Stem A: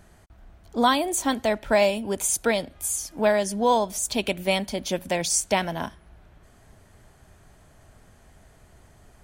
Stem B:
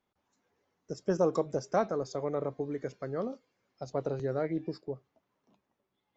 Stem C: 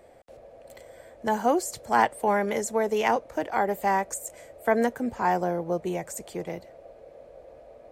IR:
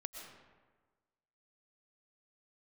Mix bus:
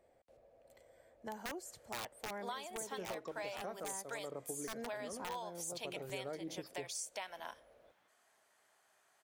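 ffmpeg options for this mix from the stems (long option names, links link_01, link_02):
-filter_complex "[0:a]highpass=740,adelay=1650,volume=-11.5dB[link_01];[1:a]lowshelf=frequency=210:gain=-7.5,adelay=1900,volume=2.5dB[link_02];[2:a]aeval=exprs='(mod(5.31*val(0)+1,2)-1)/5.31':channel_layout=same,volume=-16.5dB,asplit=2[link_03][link_04];[link_04]apad=whole_len=355799[link_05];[link_02][link_05]sidechaincompress=threshold=-47dB:ratio=8:attack=8.8:release=991[link_06];[link_01][link_06][link_03]amix=inputs=3:normalize=0,acompressor=threshold=-40dB:ratio=6"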